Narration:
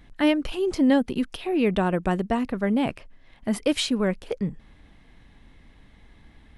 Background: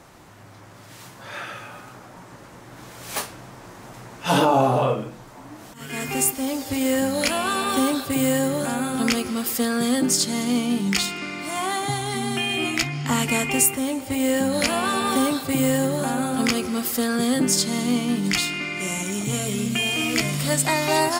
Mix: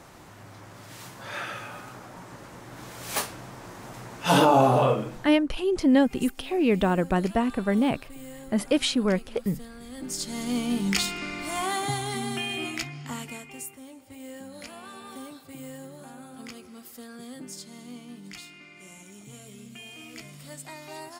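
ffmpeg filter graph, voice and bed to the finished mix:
-filter_complex "[0:a]adelay=5050,volume=1[s0];[1:a]volume=8.41,afade=t=out:st=5.15:d=0.31:silence=0.0841395,afade=t=in:st=9.91:d=0.93:silence=0.112202,afade=t=out:st=11.86:d=1.59:silence=0.133352[s1];[s0][s1]amix=inputs=2:normalize=0"

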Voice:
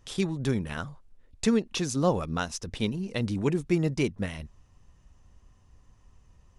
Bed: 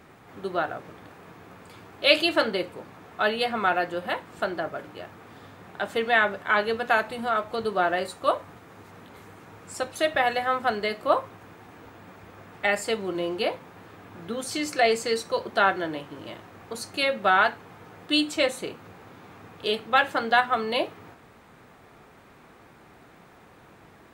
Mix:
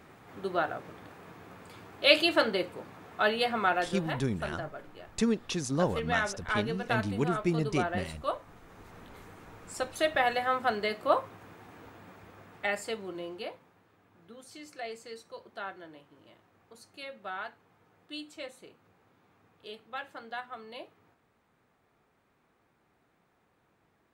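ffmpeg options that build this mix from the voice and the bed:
-filter_complex "[0:a]adelay=3750,volume=0.668[s0];[1:a]volume=1.41,afade=t=out:st=3.53:d=0.76:silence=0.473151,afade=t=in:st=8.41:d=0.56:silence=0.530884,afade=t=out:st=11.85:d=1.99:silence=0.177828[s1];[s0][s1]amix=inputs=2:normalize=0"

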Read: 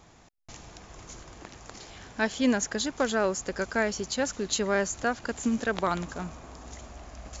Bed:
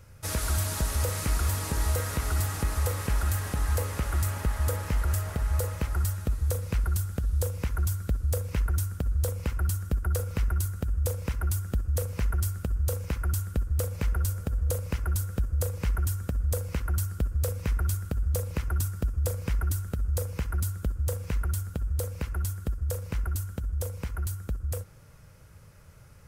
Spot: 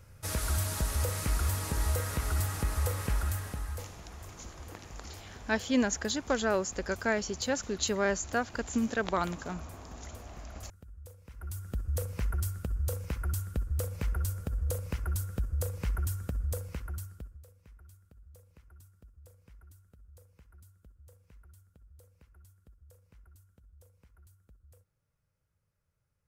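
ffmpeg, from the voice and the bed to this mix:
-filter_complex "[0:a]adelay=3300,volume=0.75[s0];[1:a]volume=5.01,afade=t=out:st=3.09:d=0.9:silence=0.11885,afade=t=in:st=11.28:d=0.64:silence=0.141254,afade=t=out:st=16.33:d=1.11:silence=0.0668344[s1];[s0][s1]amix=inputs=2:normalize=0"

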